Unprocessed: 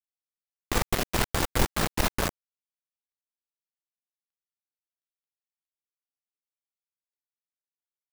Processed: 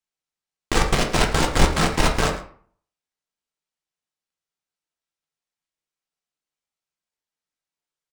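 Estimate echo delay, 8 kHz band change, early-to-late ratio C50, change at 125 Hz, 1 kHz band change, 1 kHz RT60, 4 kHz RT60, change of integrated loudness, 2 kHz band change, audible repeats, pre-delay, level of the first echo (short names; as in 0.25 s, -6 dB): 0.11 s, +5.0 dB, 8.5 dB, +7.5 dB, +8.0 dB, 0.55 s, 0.35 s, +7.0 dB, +7.5 dB, 1, 3 ms, -16.5 dB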